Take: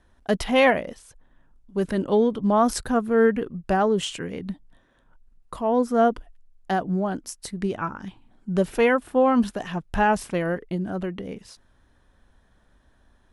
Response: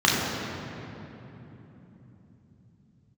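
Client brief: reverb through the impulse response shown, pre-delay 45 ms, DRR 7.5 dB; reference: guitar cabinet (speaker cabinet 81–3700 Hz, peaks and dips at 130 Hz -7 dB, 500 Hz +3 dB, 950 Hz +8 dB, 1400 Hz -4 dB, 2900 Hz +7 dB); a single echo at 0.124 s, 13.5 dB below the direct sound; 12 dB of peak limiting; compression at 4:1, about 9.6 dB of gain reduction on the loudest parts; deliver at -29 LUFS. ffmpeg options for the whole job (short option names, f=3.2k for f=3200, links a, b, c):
-filter_complex "[0:a]acompressor=threshold=-26dB:ratio=4,alimiter=level_in=2dB:limit=-24dB:level=0:latency=1,volume=-2dB,aecho=1:1:124:0.211,asplit=2[a][b];[1:a]atrim=start_sample=2205,adelay=45[c];[b][c]afir=irnorm=-1:irlink=0,volume=-27.5dB[d];[a][d]amix=inputs=2:normalize=0,highpass=81,equalizer=f=130:t=q:w=4:g=-7,equalizer=f=500:t=q:w=4:g=3,equalizer=f=950:t=q:w=4:g=8,equalizer=f=1.4k:t=q:w=4:g=-4,equalizer=f=2.9k:t=q:w=4:g=7,lowpass=f=3.7k:w=0.5412,lowpass=f=3.7k:w=1.3066,volume=4.5dB"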